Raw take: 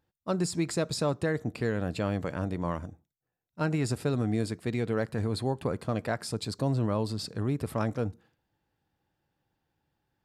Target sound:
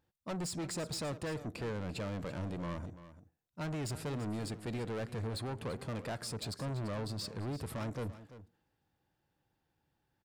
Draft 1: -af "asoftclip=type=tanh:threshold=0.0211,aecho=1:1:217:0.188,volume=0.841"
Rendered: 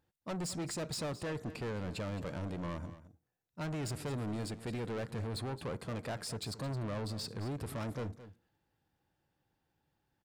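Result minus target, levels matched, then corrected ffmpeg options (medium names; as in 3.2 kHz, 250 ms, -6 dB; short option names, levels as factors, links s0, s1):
echo 122 ms early
-af "asoftclip=type=tanh:threshold=0.0211,aecho=1:1:339:0.188,volume=0.841"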